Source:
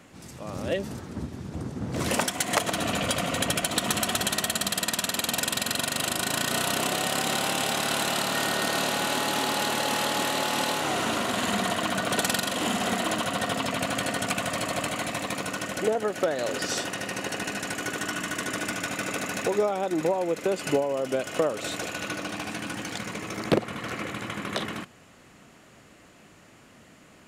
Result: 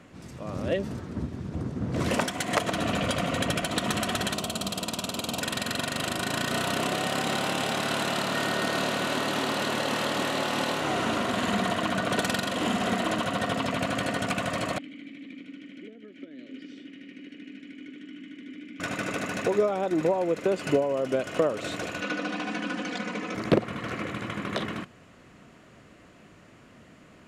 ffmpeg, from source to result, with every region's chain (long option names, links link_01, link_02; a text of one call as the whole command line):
ffmpeg -i in.wav -filter_complex "[0:a]asettb=1/sr,asplit=3[link_01][link_02][link_03];[link_01]atrim=end=4.344[link_04];[link_02]atrim=start=4.34:end=5.42,asetpts=PTS-STARTPTS,afade=type=in:duration=0.004:curve=qsin,afade=type=out:start_time=1.076:duration=0.004:curve=qsin,equalizer=frequency=1800:width=2.8:gain=-14,asoftclip=type=hard:threshold=-15.5dB[link_05];[link_03]atrim=start=5.416[link_06];[link_04][link_05]acrossfade=duration=0.004:curve1=hsin:curve2=qsin[link_07];[link_07][link_06]acrossfade=duration=0.004:curve1=qsin:curve2=hsin,asettb=1/sr,asplit=3[link_08][link_09][link_10];[link_08]atrim=end=14.784[link_11];[link_09]atrim=start=14.78:end=18.8,asetpts=PTS-STARTPTS,afade=type=in:duration=0.004:curve=qsin,afade=type=out:start_time=4.016:duration=0.004:curve=qsin,acrossover=split=170|510[link_12][link_13][link_14];[link_12]acompressor=threshold=-49dB:ratio=4[link_15];[link_13]acompressor=threshold=-31dB:ratio=4[link_16];[link_14]acompressor=threshold=-32dB:ratio=4[link_17];[link_15][link_16][link_17]amix=inputs=3:normalize=0,asplit=3[link_18][link_19][link_20];[link_18]bandpass=frequency=270:width_type=q:width=8,volume=0dB[link_21];[link_19]bandpass=frequency=2290:width_type=q:width=8,volume=-6dB[link_22];[link_20]bandpass=frequency=3010:width_type=q:width=8,volume=-9dB[link_23];[link_21][link_22][link_23]amix=inputs=3:normalize=0[link_24];[link_10]atrim=start=18.796[link_25];[link_11][link_24]acrossfade=duration=0.004:curve1=hsin:curve2=qsin[link_26];[link_26][link_25]acrossfade=duration=0.004:curve1=qsin:curve2=hsin,asettb=1/sr,asplit=3[link_27][link_28][link_29];[link_27]atrim=end=22.014[link_30];[link_28]atrim=start=22.01:end=23.35,asetpts=PTS-STARTPTS,afade=type=in:duration=0.004:curve=qsin,afade=type=out:start_time=1.336:duration=0.004:curve=qsin,highpass=180,lowpass=6200,aecho=1:1:4:0.81,atrim=end_sample=59094[link_31];[link_29]atrim=start=23.346[link_32];[link_30][link_31]acrossfade=duration=0.004:curve1=hsin:curve2=qsin[link_33];[link_33][link_32]acrossfade=duration=0.004:curve1=qsin:curve2=hsin,lowpass=frequency=3500:poles=1,lowshelf=frequency=350:gain=2.5,bandreject=frequency=830:width=12" out.wav